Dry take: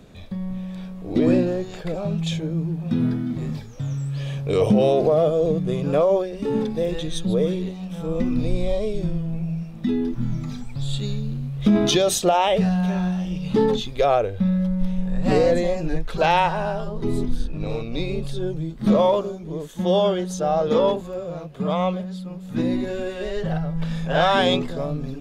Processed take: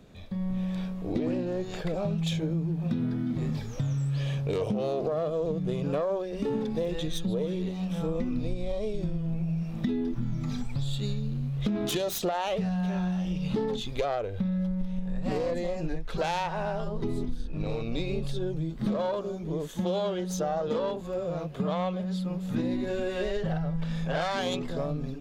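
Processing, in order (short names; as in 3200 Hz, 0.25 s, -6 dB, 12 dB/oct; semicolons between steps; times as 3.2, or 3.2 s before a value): self-modulated delay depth 0.11 ms; AGC; bell 9000 Hz -2.5 dB 0.42 oct; compressor, threshold -20 dBFS, peak gain reduction 13.5 dB; gain -6.5 dB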